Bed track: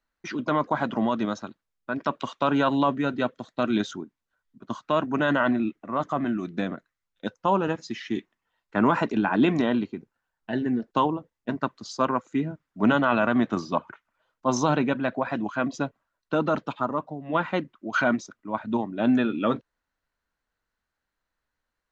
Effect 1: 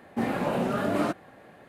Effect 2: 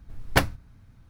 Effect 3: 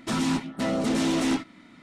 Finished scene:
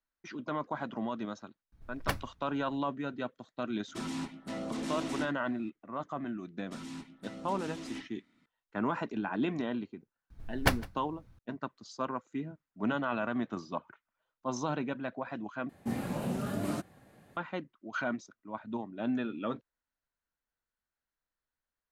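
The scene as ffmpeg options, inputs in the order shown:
-filter_complex "[2:a]asplit=2[s0][s1];[3:a]asplit=2[s2][s3];[0:a]volume=0.282[s4];[s3]equalizer=f=720:t=o:w=1.3:g=-4.5[s5];[s1]aecho=1:1:158:0.075[s6];[1:a]bass=f=250:g=11,treble=f=4000:g=12[s7];[s4]asplit=2[s8][s9];[s8]atrim=end=15.694[s10];[s7]atrim=end=1.68,asetpts=PTS-STARTPTS,volume=0.266[s11];[s9]atrim=start=17.366[s12];[s0]atrim=end=1.09,asetpts=PTS-STARTPTS,volume=0.251,afade=t=in:d=0.004:c=hsin,afade=t=out:st=1.086:d=0.004:c=hsin,adelay=1720[s13];[s2]atrim=end=1.82,asetpts=PTS-STARTPTS,volume=0.251,afade=t=in:d=0.004:c=hsin,afade=t=out:st=1.816:d=0.004:c=hsin,adelay=3880[s14];[s5]atrim=end=1.82,asetpts=PTS-STARTPTS,volume=0.133,afade=t=in:d=0.004:c=hsin,afade=t=out:st=1.816:d=0.004:c=hsin,adelay=6640[s15];[s6]atrim=end=1.09,asetpts=PTS-STARTPTS,volume=0.531,afade=t=in:d=0.004:c=hsin,afade=t=out:st=1.086:d=0.004:c=hsin,adelay=10300[s16];[s10][s11]acrossfade=d=0.004:c1=hsin:c2=hsin[s17];[s17][s12]acrossfade=d=0.004:c1=hsin:c2=hsin[s18];[s18][s13][s14][s15][s16]amix=inputs=5:normalize=0"

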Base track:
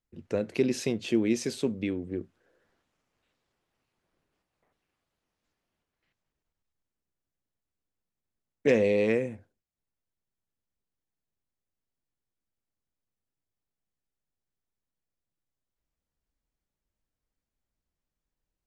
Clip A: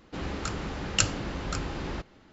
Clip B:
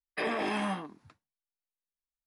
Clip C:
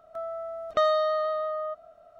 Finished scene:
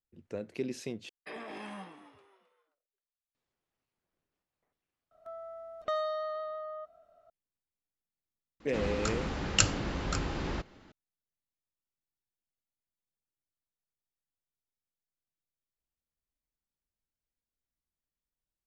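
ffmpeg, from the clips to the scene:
-filter_complex "[0:a]volume=0.335[s0];[2:a]asplit=4[s1][s2][s3][s4];[s2]adelay=264,afreqshift=96,volume=0.224[s5];[s3]adelay=528,afreqshift=192,volume=0.0785[s6];[s4]adelay=792,afreqshift=288,volume=0.0275[s7];[s1][s5][s6][s7]amix=inputs=4:normalize=0[s8];[s0]asplit=2[s9][s10];[s9]atrim=end=1.094[s11];[s8]atrim=end=2.26,asetpts=PTS-STARTPTS,volume=0.251[s12];[s10]atrim=start=3.346[s13];[3:a]atrim=end=2.19,asetpts=PTS-STARTPTS,volume=0.335,afade=t=in:d=0.004:c=hsin,afade=t=out:st=2.186:d=0.004:c=hsin,adelay=5110[s14];[1:a]atrim=end=2.32,asetpts=PTS-STARTPTS,volume=0.944,afade=t=in:d=0.004:c=hsin,afade=t=out:st=2.316:d=0.004:c=hsin,adelay=8600[s15];[s11][s12]acrossfade=d=0.004:c1=hsin:c2=hsin[s16];[s16][s13]acrossfade=d=0.004:c1=hsin:c2=hsin[s17];[s17][s14][s15]amix=inputs=3:normalize=0"

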